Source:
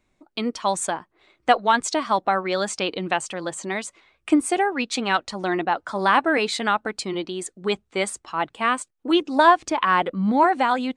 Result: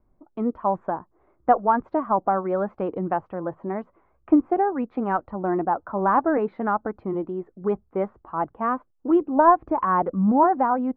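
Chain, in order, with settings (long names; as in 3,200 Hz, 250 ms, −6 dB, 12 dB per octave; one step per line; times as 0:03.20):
low-pass filter 1,200 Hz 24 dB per octave
low-shelf EQ 100 Hz +9.5 dB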